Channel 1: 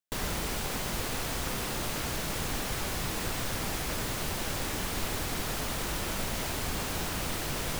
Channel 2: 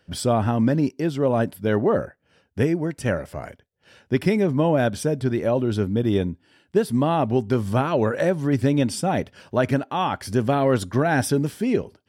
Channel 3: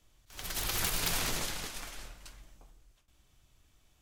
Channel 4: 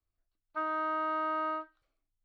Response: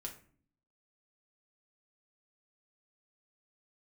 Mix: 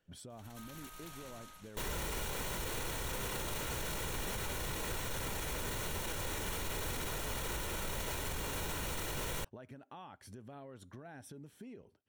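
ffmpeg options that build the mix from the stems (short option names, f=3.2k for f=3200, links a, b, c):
-filter_complex "[0:a]aecho=1:1:2.1:0.37,adelay=1650,volume=-1dB[a];[1:a]alimiter=limit=-17dB:level=0:latency=1:release=131,acompressor=threshold=-31dB:ratio=4,volume=-17.5dB[b];[2:a]asoftclip=type=tanh:threshold=-21dB,volume=-19.5dB[c];[3:a]highpass=1.4k,volume=-19.5dB[d];[a][b][c][d]amix=inputs=4:normalize=0,bandreject=f=4.9k:w=5.7,alimiter=level_in=5.5dB:limit=-24dB:level=0:latency=1:release=31,volume=-5.5dB"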